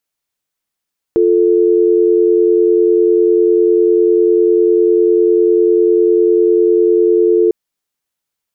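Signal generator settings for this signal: call progress tone dial tone, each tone -10.5 dBFS 6.35 s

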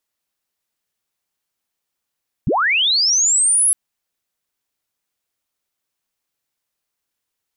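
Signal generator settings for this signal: sweep linear 81 Hz -> 11 kHz -14 dBFS -> -11.5 dBFS 1.26 s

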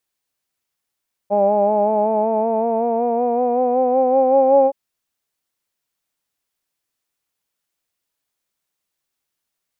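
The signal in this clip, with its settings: formant-synthesis vowel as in hawed, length 3.42 s, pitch 200 Hz, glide +5.5 st, vibrato depth 0.45 st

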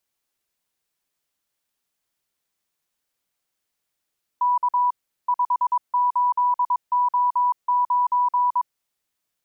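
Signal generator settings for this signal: Morse "K 58O9" 22 wpm 984 Hz -16.5 dBFS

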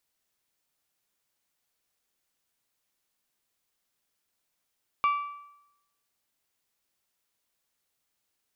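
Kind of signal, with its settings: metal hit bell, lowest mode 1.16 kHz, decay 0.85 s, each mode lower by 10 dB, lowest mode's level -19.5 dB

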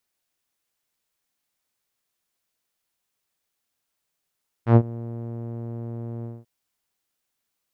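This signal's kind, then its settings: synth note saw A#2 12 dB/octave, low-pass 490 Hz, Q 0.85, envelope 2 oct, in 0.13 s, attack 101 ms, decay 0.06 s, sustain -21.5 dB, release 0.21 s, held 1.58 s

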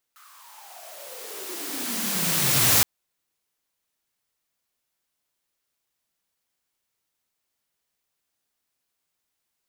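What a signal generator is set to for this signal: swept filtered noise white, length 2.67 s highpass, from 1.3 kHz, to 100 Hz, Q 9.5, exponential, gain ramp +37.5 dB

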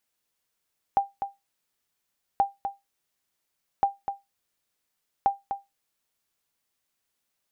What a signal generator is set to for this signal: sonar ping 795 Hz, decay 0.19 s, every 1.43 s, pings 4, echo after 0.25 s, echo -8.5 dB -13 dBFS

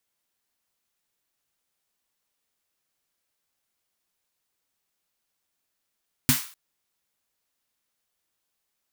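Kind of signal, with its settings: snare drum length 0.25 s, tones 140 Hz, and 250 Hz, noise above 1 kHz, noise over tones -1.5 dB, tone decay 0.14 s, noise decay 0.42 s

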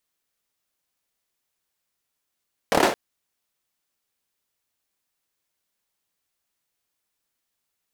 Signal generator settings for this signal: hand clap length 0.22 s, bursts 5, apart 27 ms, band 500 Hz, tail 0.38 s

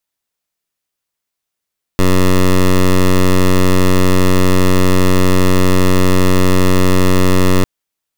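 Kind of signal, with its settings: pulse 92.5 Hz, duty 12% -9 dBFS 5.65 s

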